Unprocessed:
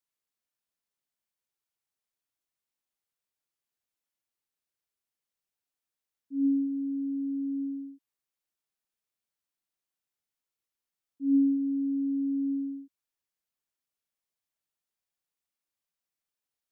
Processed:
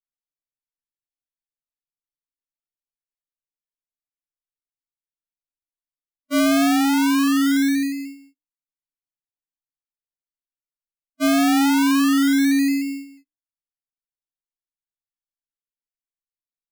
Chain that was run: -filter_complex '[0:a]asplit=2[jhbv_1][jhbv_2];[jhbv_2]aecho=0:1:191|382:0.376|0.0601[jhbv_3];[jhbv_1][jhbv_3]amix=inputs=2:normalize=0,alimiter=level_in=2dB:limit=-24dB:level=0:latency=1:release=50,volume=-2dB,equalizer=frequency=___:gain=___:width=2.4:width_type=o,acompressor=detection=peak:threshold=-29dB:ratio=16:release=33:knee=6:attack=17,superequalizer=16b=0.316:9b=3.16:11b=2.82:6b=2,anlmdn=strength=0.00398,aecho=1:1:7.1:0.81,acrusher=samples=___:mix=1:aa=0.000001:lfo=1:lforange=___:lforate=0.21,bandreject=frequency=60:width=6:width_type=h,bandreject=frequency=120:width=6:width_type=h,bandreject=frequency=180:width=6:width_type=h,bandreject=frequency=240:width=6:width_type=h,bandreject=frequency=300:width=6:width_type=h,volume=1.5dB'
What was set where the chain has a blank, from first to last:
290, 5, 36, 36